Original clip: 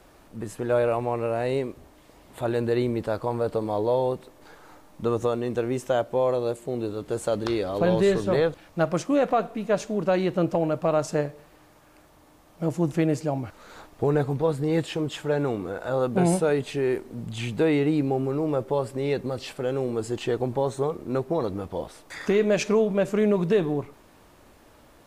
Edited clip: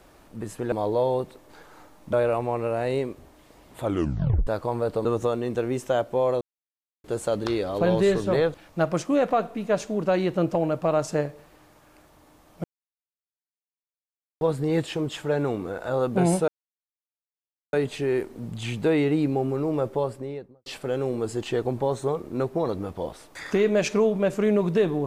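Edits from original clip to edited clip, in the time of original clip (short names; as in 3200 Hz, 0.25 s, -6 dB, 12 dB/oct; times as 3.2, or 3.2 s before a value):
2.41 tape stop 0.65 s
3.64–5.05 move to 0.72
6.41–7.04 mute
12.64–14.41 mute
16.48 insert silence 1.25 s
18.64–19.41 studio fade out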